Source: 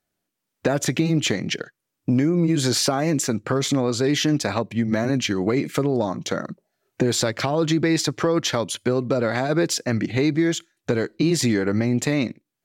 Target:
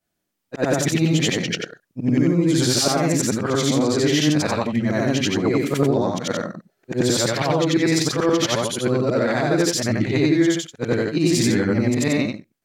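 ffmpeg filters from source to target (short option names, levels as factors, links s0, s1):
-af "afftfilt=real='re':imag='-im':win_size=8192:overlap=0.75,volume=2.11"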